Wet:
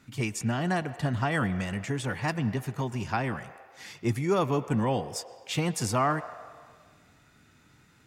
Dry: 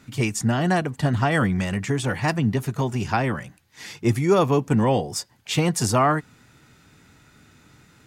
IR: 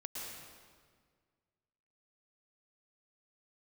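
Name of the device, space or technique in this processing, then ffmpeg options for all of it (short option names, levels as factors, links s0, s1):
filtered reverb send: -filter_complex "[0:a]asplit=2[s0][s1];[s1]highpass=f=450:w=0.5412,highpass=f=450:w=1.3066,lowpass=3600[s2];[1:a]atrim=start_sample=2205[s3];[s2][s3]afir=irnorm=-1:irlink=0,volume=0.299[s4];[s0][s4]amix=inputs=2:normalize=0,volume=0.447"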